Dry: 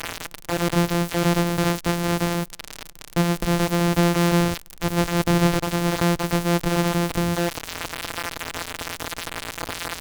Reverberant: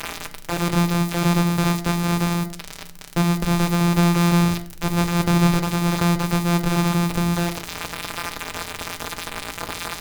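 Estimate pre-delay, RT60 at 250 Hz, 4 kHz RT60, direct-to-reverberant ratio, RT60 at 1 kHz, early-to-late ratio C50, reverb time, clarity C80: 5 ms, 0.85 s, 0.40 s, 7.5 dB, 0.45 s, 15.5 dB, 0.50 s, 19.0 dB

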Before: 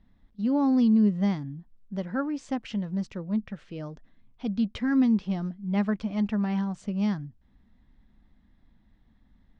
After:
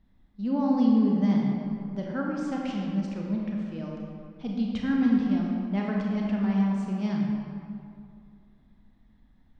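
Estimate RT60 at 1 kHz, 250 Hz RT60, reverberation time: 2.4 s, 2.4 s, 2.4 s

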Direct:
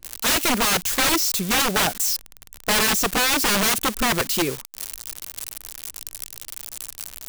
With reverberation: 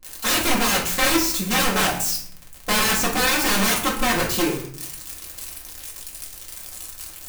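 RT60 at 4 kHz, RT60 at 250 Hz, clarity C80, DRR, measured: 0.40 s, 0.95 s, 10.0 dB, −4.0 dB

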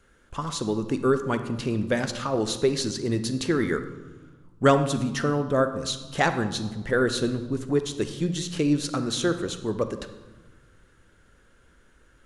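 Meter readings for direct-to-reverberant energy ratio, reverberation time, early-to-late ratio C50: 9.0 dB, 1.3 s, 10.5 dB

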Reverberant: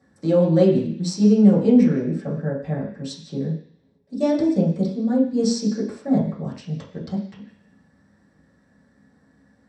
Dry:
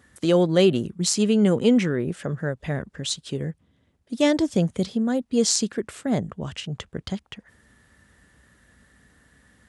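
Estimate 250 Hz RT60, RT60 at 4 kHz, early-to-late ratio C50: 0.50 s, 0.85 s, 7.0 dB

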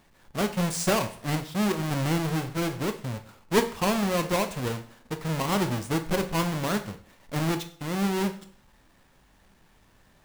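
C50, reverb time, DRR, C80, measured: 12.5 dB, 0.55 s, 7.5 dB, 16.0 dB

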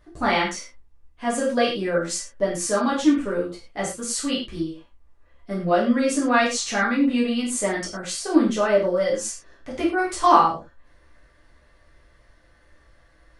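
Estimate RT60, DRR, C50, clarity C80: non-exponential decay, −7.0 dB, 6.0 dB, 10.0 dB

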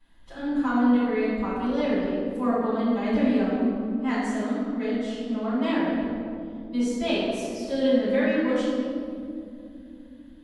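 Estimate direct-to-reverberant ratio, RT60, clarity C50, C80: −15.5 dB, 2.6 s, −3.0 dB, −0.5 dB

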